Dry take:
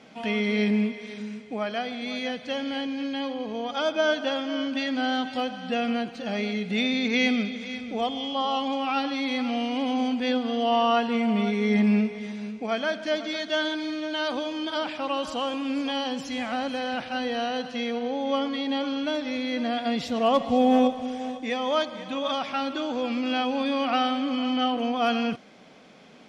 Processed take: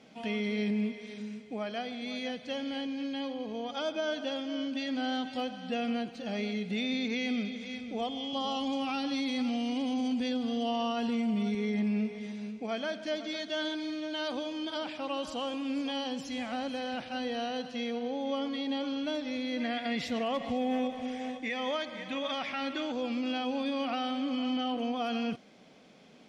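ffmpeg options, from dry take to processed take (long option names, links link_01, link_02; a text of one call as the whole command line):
ffmpeg -i in.wav -filter_complex "[0:a]asettb=1/sr,asplit=3[link_01][link_02][link_03];[link_01]atrim=end=4.244[link_04];[link_02]atrim=start=4.24:end=4.89,asetpts=PTS-STARTPTS,afade=type=in:duration=0.004:curve=qsin,afade=type=out:start_time=0.646:duration=0.004:curve=qsin,equalizer=frequency=1200:width_type=o:width=1.7:gain=-3.5[link_05];[link_03]atrim=start=4.886[link_06];[link_04][link_05]acrossfade=duration=0.004:curve1=hsin:curve2=qsin[link_07];[link_07][link_06]acrossfade=duration=0.004:curve1=qsin:curve2=hsin,asettb=1/sr,asplit=3[link_08][link_09][link_10];[link_08]atrim=end=8.334[link_11];[link_09]atrim=start=8.33:end=11.55,asetpts=PTS-STARTPTS,afade=type=in:duration=0.004:curve=qsin,afade=type=out:start_time=3.216:duration=0.004:curve=qsin,bass=frequency=250:gain=8,treble=frequency=4000:gain=8[link_12];[link_10]atrim=start=11.546[link_13];[link_11][link_12]acrossfade=duration=0.004:curve1=hsin:curve2=qsin[link_14];[link_14][link_13]acrossfade=duration=0.004:curve1=qsin:curve2=hsin,asettb=1/sr,asplit=3[link_15][link_16][link_17];[link_15]atrim=end=19.604[link_18];[link_16]atrim=start=19.6:end=22.92,asetpts=PTS-STARTPTS,afade=type=in:duration=0.004:curve=qsin,afade=type=out:start_time=3.316:duration=0.004:curve=qsin,equalizer=frequency=2000:width_type=o:width=0.75:gain=11.5[link_19];[link_17]atrim=start=22.916[link_20];[link_18][link_19]acrossfade=duration=0.004:curve1=hsin:curve2=qsin[link_21];[link_21][link_20]acrossfade=duration=0.004:curve1=qsin:curve2=hsin,equalizer=frequency=1300:width=0.79:gain=-4.5,alimiter=limit=-19.5dB:level=0:latency=1:release=75,volume=-4.5dB" out.wav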